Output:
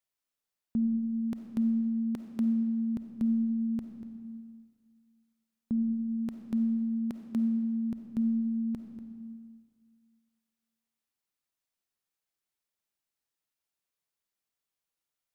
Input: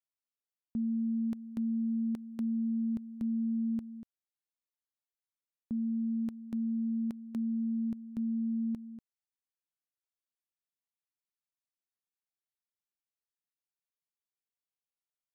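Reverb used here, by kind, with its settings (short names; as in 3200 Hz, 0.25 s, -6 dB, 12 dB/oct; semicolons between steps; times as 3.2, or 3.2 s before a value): digital reverb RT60 1.9 s, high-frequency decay 0.85×, pre-delay 10 ms, DRR 6.5 dB; gain +5 dB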